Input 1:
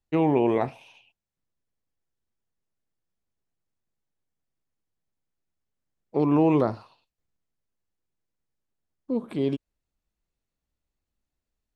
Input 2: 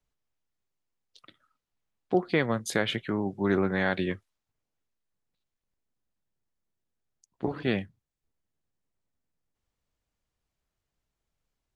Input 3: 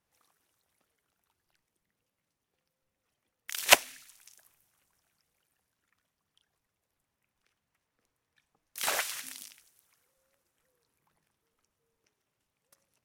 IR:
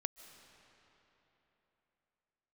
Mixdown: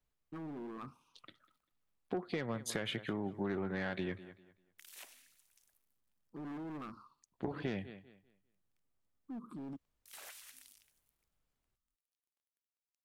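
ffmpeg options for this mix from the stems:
-filter_complex "[0:a]firequalizer=gain_entry='entry(270,0);entry(640,-25);entry(1200,10);entry(1800,-23);entry(5300,-3)':delay=0.05:min_phase=1,asoftclip=type=hard:threshold=-26.5dB,adelay=200,volume=-8.5dB[a];[1:a]volume=-2.5dB,asplit=2[b][c];[c]volume=-21dB[d];[2:a]highshelf=f=2.4k:g=6,acrusher=bits=9:mix=0:aa=0.000001,adelay=1300,volume=-18.5dB[e];[a][e]amix=inputs=2:normalize=0,equalizer=f=110:w=4.4:g=-14,alimiter=level_in=15dB:limit=-24dB:level=0:latency=1:release=94,volume=-15dB,volume=0dB[f];[d]aecho=0:1:197|394|591|788:1|0.25|0.0625|0.0156[g];[b][f][g]amix=inputs=3:normalize=0,equalizer=f=5.8k:w=1.5:g=-3,asoftclip=type=tanh:threshold=-21dB,acompressor=threshold=-34dB:ratio=6"

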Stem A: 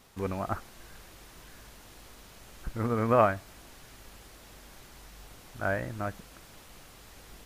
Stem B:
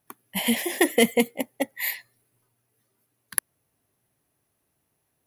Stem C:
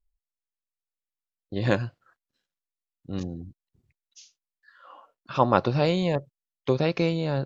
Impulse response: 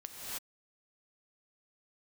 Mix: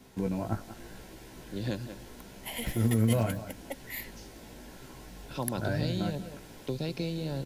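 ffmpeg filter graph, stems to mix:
-filter_complex "[0:a]flanger=delay=15.5:depth=2.5:speed=0.82,volume=2.5dB,asplit=2[a][b];[b]volume=-18.5dB[c];[1:a]highpass=580,adelay=2100,volume=-11.5dB[d];[2:a]equalizer=f=4.8k:w=0.89:g=10.5,volume=-13.5dB,asplit=2[e][f];[f]volume=-14.5dB[g];[c][g]amix=inputs=2:normalize=0,aecho=0:1:184:1[h];[a][d][e][h]amix=inputs=4:normalize=0,equalizer=f=250:t=o:w=2.4:g=10,acrossover=split=170|3000[i][j][k];[j]acompressor=threshold=-34dB:ratio=3[l];[i][l][k]amix=inputs=3:normalize=0,asuperstop=centerf=1200:order=8:qfactor=6.7"

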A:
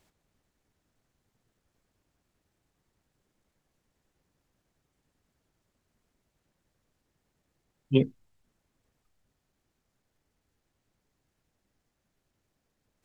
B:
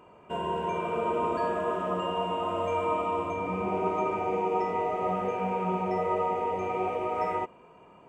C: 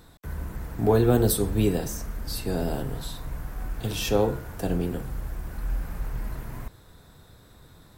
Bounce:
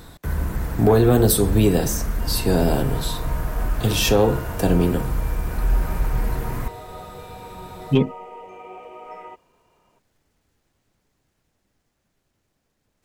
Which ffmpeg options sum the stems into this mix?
-filter_complex "[0:a]dynaudnorm=f=350:g=17:m=4.5dB,volume=-1dB[a];[1:a]highpass=f=320:p=1,equalizer=f=3k:t=o:w=0.22:g=5.5,adelay=1900,volume=-8.5dB[b];[2:a]volume=2.5dB[c];[a][c]amix=inputs=2:normalize=0,acontrast=81,alimiter=limit=-7.5dB:level=0:latency=1:release=134,volume=0dB[d];[b][d]amix=inputs=2:normalize=0"

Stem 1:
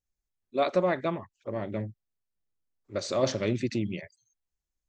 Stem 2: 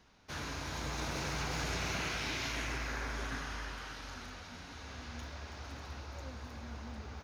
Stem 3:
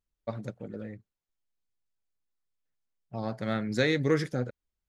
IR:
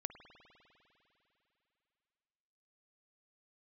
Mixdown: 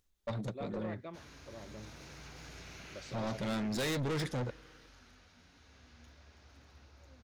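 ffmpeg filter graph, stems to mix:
-filter_complex "[0:a]acompressor=mode=upward:threshold=-46dB:ratio=2.5,volume=-16.5dB[a];[1:a]equalizer=f=960:w=1.4:g=-4.5,adelay=850,volume=-13dB[b];[2:a]equalizer=f=3.7k:t=o:w=0.39:g=7,volume=3dB,asplit=2[c][d];[d]volume=-22.5dB[e];[3:a]atrim=start_sample=2205[f];[e][f]afir=irnorm=-1:irlink=0[g];[a][b][c][g]amix=inputs=4:normalize=0,asoftclip=type=tanh:threshold=-32dB"

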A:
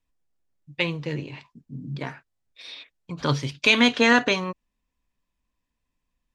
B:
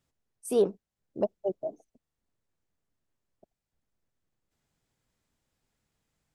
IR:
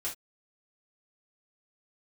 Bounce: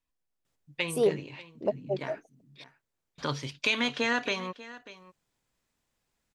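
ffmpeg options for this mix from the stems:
-filter_complex "[0:a]acompressor=threshold=-22dB:ratio=2,volume=-4dB,asplit=3[a][b][c];[a]atrim=end=2.64,asetpts=PTS-STARTPTS,afade=t=out:st=2.636:d=0.004:c=hsin[d];[b]atrim=start=2.64:end=3.18,asetpts=PTS-STARTPTS,volume=0[e];[c]atrim=start=3.18,asetpts=PTS-STARTPTS,afade=t=in:d=0.004:c=hsin[f];[d][e][f]concat=n=3:v=0:a=1,asplit=2[g][h];[h]volume=-17.5dB[i];[1:a]adelay=450,volume=1dB[j];[i]aecho=0:1:591:1[k];[g][j][k]amix=inputs=3:normalize=0,lowshelf=f=290:g=-6"

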